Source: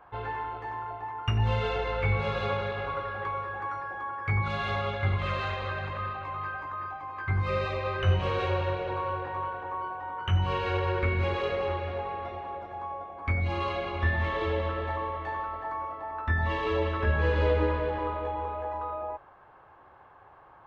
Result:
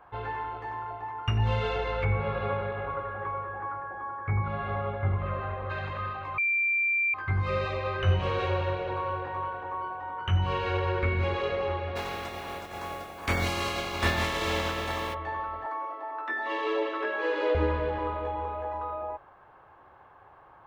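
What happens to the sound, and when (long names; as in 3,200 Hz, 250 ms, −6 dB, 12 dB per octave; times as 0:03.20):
0:02.04–0:05.69: low-pass filter 2,100 Hz → 1,200 Hz
0:06.38–0:07.14: beep over 2,360 Hz −23 dBFS
0:11.95–0:15.13: compressing power law on the bin magnitudes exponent 0.47
0:15.66–0:17.55: Butterworth high-pass 270 Hz 72 dB per octave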